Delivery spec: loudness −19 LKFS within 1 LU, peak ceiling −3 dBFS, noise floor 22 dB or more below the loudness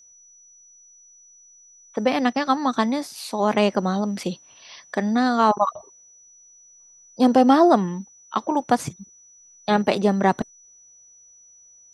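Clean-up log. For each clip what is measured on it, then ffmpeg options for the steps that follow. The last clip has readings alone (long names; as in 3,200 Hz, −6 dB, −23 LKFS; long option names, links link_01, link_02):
interfering tone 5,900 Hz; level of the tone −49 dBFS; integrated loudness −21.5 LKFS; sample peak −3.5 dBFS; target loudness −19.0 LKFS
→ -af "bandreject=frequency=5900:width=30"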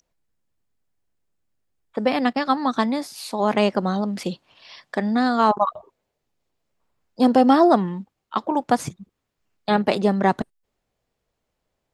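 interfering tone none found; integrated loudness −21.0 LKFS; sample peak −3.5 dBFS; target loudness −19.0 LKFS
→ -af "volume=2dB,alimiter=limit=-3dB:level=0:latency=1"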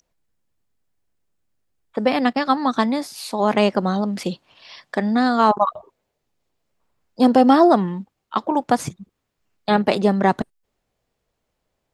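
integrated loudness −19.5 LKFS; sample peak −3.0 dBFS; background noise floor −77 dBFS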